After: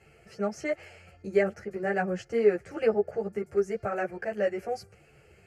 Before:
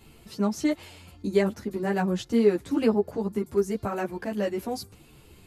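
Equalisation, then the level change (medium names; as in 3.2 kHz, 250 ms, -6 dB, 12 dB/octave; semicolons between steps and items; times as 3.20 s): high-pass 190 Hz 6 dB/octave; low-pass 4.8 kHz 12 dB/octave; static phaser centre 1 kHz, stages 6; +3.0 dB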